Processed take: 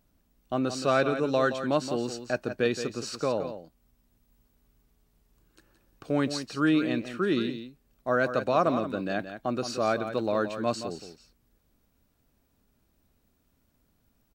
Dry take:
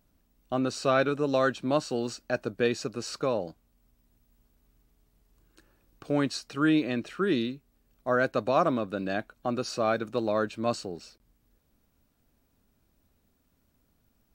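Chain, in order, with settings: echo 0.172 s -10 dB

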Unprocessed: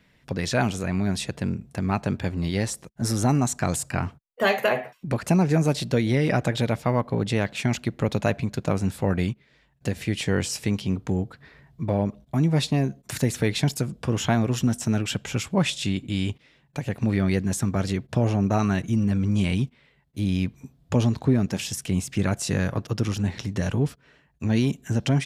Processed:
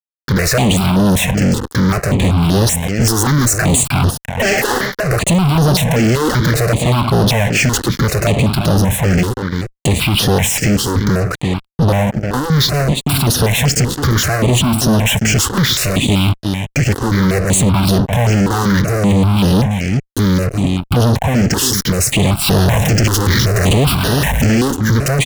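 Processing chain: 22.41–24.52 zero-crossing step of -34 dBFS; limiter -14 dBFS, peak gain reduction 6 dB; echo 0.346 s -16.5 dB; fuzz box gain 42 dB, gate -45 dBFS; step phaser 5.2 Hz 630–7600 Hz; gain +4 dB

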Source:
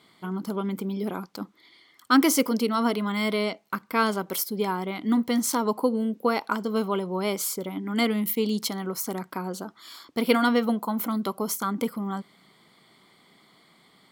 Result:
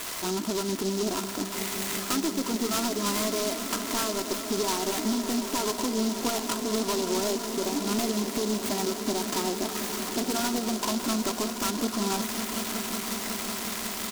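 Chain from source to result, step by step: switching spikes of -21 dBFS; inverse Chebyshev low-pass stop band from 12000 Hz, stop band 80 dB; low shelf 190 Hz -6.5 dB; comb 3 ms, depth 60%; compressor 12:1, threshold -30 dBFS, peak gain reduction 17 dB; hard clip -31 dBFS, distortion -12 dB; on a send: swelling echo 0.184 s, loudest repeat 5, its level -14 dB; on the sum: noise-modulated delay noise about 5000 Hz, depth 0.13 ms; gain +7 dB

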